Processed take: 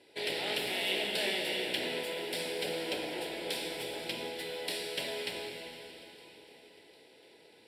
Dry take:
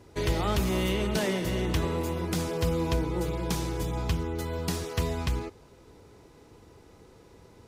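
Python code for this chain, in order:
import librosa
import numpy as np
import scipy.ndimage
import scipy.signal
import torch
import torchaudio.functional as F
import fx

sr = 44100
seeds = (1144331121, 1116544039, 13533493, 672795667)

p1 = np.minimum(x, 2.0 * 10.0 ** (-28.0 / 20.0) - x)
p2 = fx.bandpass_edges(p1, sr, low_hz=510.0, high_hz=7100.0)
p3 = fx.high_shelf(p2, sr, hz=4100.0, db=11.5)
p4 = fx.fixed_phaser(p3, sr, hz=2800.0, stages=4)
p5 = p4 + fx.echo_feedback(p4, sr, ms=751, feedback_pct=55, wet_db=-23.0, dry=0)
y = fx.rev_plate(p5, sr, seeds[0], rt60_s=3.8, hf_ratio=0.9, predelay_ms=0, drr_db=1.5)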